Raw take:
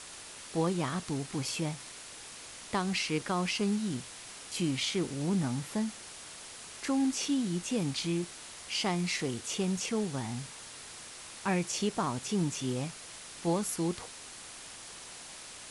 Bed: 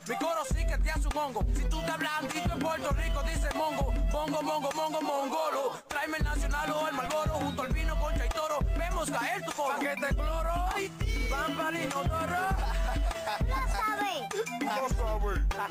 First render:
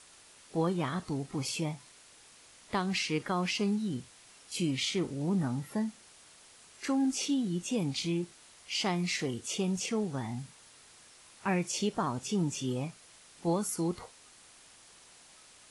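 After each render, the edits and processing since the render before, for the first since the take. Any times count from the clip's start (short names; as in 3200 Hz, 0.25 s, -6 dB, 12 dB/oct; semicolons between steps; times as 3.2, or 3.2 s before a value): noise print and reduce 10 dB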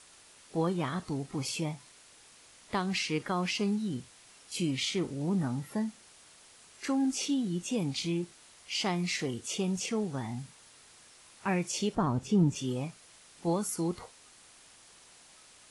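11.95–12.56 tilt -2.5 dB/oct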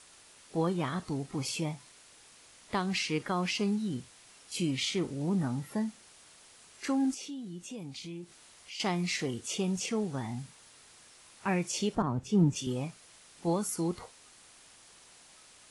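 7.14–8.8 compressor 2:1, threshold -47 dBFS; 12.02–12.67 three-band expander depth 70%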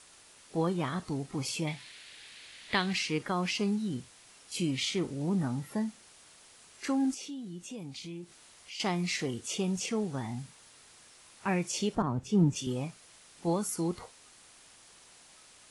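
1.67–2.93 band shelf 2700 Hz +11 dB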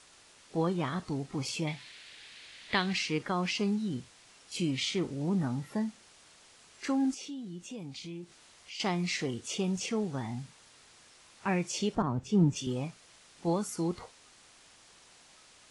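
LPF 7800 Hz 12 dB/oct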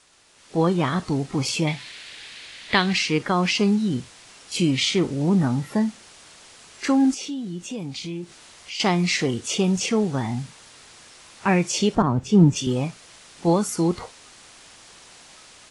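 AGC gain up to 10.5 dB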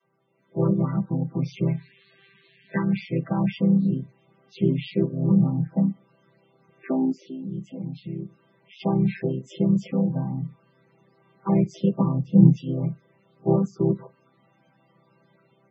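chord vocoder major triad, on C3; loudest bins only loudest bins 32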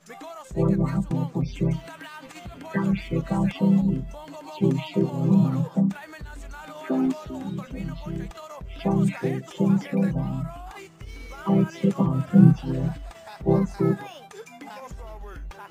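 add bed -9 dB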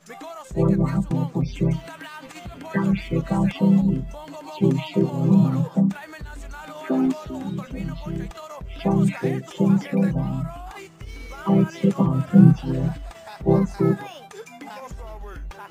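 gain +2.5 dB; limiter -2 dBFS, peak gain reduction 1.5 dB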